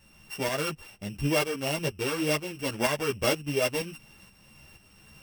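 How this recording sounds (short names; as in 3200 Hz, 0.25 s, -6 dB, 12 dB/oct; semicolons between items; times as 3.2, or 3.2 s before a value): a buzz of ramps at a fixed pitch in blocks of 16 samples; tremolo saw up 2.1 Hz, depth 60%; a shimmering, thickened sound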